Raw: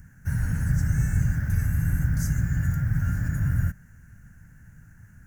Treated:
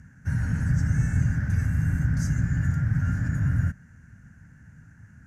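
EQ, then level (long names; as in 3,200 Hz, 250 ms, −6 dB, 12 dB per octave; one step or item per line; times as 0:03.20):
high-pass filter 62 Hz
low-pass filter 6,200 Hz 12 dB per octave
parametric band 250 Hz +4 dB 0.48 octaves
+1.0 dB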